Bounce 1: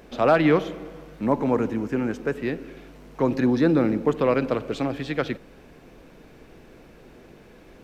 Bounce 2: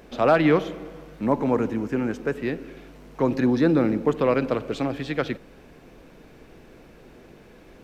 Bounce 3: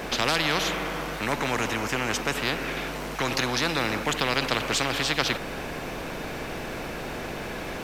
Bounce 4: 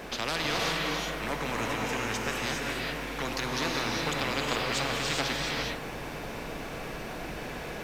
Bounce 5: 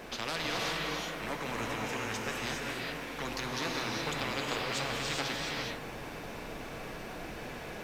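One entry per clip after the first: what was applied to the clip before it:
nothing audible
spectral compressor 4:1
non-linear reverb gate 0.44 s rising, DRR -1 dB; gain -7.5 dB
flange 1.2 Hz, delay 8.1 ms, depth 2.8 ms, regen -67%

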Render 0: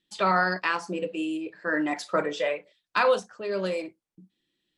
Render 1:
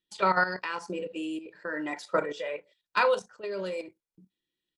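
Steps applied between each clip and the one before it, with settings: comb 2.1 ms, depth 33%; level quantiser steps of 11 dB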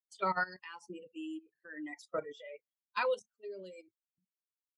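per-bin expansion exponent 2; gain -6 dB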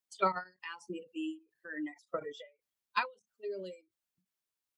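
ending taper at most 220 dB/s; gain +5 dB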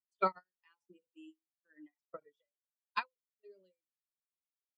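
upward expander 2.5:1, over -49 dBFS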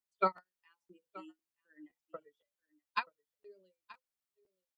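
echo 0.928 s -20 dB; crackling interface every 0.51 s, samples 512, repeat, from 0.36; gain +1 dB

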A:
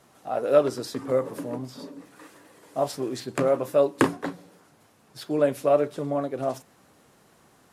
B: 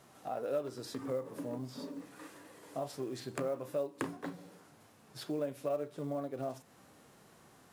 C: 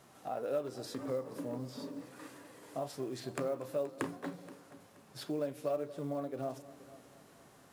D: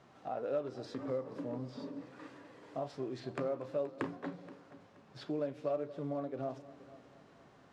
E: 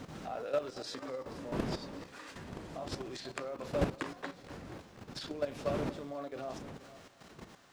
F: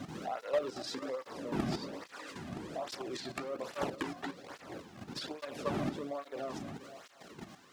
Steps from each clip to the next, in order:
harmonic-percussive split percussive -6 dB; compressor 2.5:1, threshold -39 dBFS, peak gain reduction 16 dB; short-mantissa float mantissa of 4-bit
multi-head echo 0.238 s, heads first and second, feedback 45%, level -20 dB
air absorption 150 m
wind noise 210 Hz -36 dBFS; level quantiser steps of 11 dB; tilt +4 dB/oct; gain +8 dB
one-sided clip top -36.5 dBFS; tape flanging out of phase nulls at 1.2 Hz, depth 2.3 ms; gain +5 dB

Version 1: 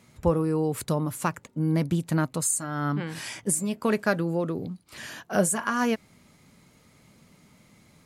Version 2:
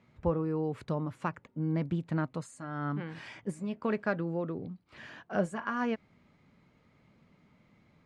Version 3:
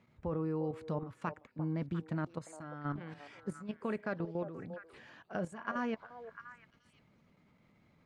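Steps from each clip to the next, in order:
LPF 2700 Hz 12 dB/oct; gain -6.5 dB
level quantiser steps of 11 dB; delay with a stepping band-pass 0.349 s, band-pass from 620 Hz, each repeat 1.4 oct, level -7 dB; gain -1.5 dB

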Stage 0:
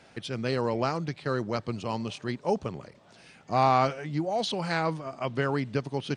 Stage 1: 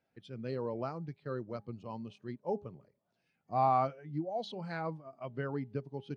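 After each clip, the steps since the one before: de-hum 205.5 Hz, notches 4; spectral expander 1.5:1; gain -6.5 dB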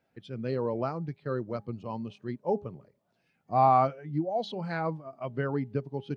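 high shelf 4800 Hz -5.5 dB; gain +6.5 dB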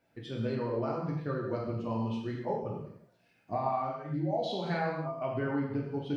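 compressor 12:1, threshold -32 dBFS, peak gain reduction 15 dB; non-linear reverb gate 0.31 s falling, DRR -3.5 dB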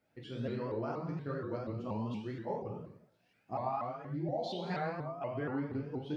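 shaped vibrato saw up 4.2 Hz, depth 160 cents; gain -4.5 dB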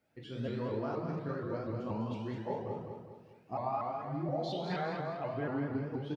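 feedback echo 0.203 s, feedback 44%, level -6 dB

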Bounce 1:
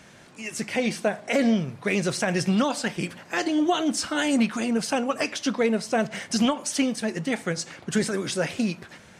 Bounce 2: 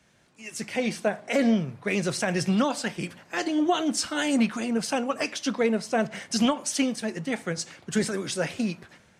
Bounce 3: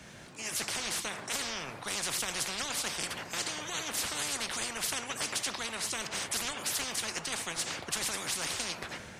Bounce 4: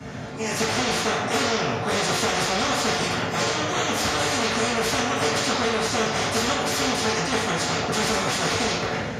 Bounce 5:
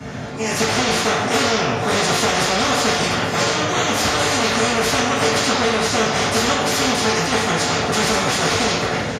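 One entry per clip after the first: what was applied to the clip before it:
three-band expander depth 40%; gain -1.5 dB
spectral compressor 10:1; gain -5.5 dB
reverb RT60 0.70 s, pre-delay 3 ms, DRR -11.5 dB; gain -5 dB
echo 0.49 s -13.5 dB; gain +5 dB

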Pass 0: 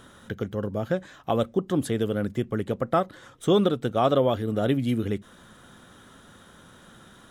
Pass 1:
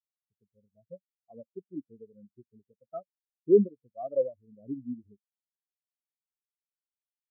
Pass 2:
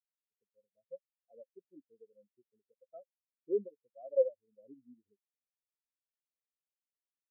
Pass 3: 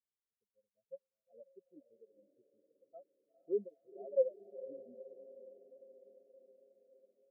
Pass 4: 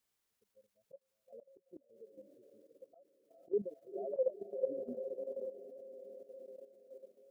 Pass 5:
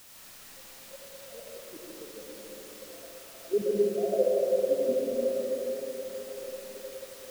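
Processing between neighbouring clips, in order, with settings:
spectral expander 4:1
vowel filter e
low-pass opened by the level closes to 530 Hz, open at -33 dBFS; diffused feedback echo 0.472 s, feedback 63%, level -15 dB; gain -2.5 dB
auto swell 0.237 s; level quantiser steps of 11 dB; gain +15 dB
in parallel at -8 dB: requantised 8-bit, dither triangular; on the sum: digital reverb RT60 3 s, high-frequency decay 0.75×, pre-delay 45 ms, DRR -4.5 dB; gain +3.5 dB

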